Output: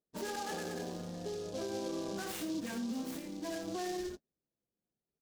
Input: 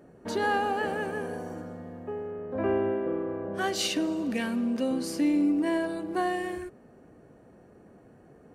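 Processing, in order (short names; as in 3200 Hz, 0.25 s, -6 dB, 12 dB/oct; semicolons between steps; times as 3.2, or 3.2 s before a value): low shelf 94 Hz +6.5 dB; on a send: echo 0.116 s -7 dB; on the sum: gate -44 dBFS, range -42 dB; compressor 2.5:1, threshold -40 dBFS, peak gain reduction 13.5 dB; plain phase-vocoder stretch 0.61×; flange 0.97 Hz, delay 4.8 ms, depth 1.2 ms, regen -55%; limiter -39 dBFS, peak gain reduction 6 dB; noise-modulated delay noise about 4600 Hz, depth 0.071 ms; gain +8 dB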